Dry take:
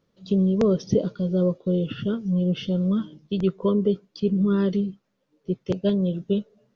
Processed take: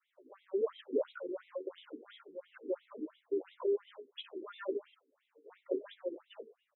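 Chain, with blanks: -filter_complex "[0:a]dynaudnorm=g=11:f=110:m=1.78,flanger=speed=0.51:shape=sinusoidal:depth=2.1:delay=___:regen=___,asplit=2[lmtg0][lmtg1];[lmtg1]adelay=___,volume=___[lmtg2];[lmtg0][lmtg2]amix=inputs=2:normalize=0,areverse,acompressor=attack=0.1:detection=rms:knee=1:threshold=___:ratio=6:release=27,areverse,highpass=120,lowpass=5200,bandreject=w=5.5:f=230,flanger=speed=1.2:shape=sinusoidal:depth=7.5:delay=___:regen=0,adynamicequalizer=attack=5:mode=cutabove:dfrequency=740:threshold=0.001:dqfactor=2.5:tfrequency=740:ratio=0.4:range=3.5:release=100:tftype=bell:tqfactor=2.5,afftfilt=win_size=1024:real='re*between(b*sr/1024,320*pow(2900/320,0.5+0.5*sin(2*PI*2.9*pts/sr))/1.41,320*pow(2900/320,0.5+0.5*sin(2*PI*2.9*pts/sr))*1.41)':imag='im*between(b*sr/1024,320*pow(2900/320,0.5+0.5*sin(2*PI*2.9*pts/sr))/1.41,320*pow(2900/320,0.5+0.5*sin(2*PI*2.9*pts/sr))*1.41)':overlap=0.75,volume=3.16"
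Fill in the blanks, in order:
4.8, 87, 13, 0.299, 0.0282, 10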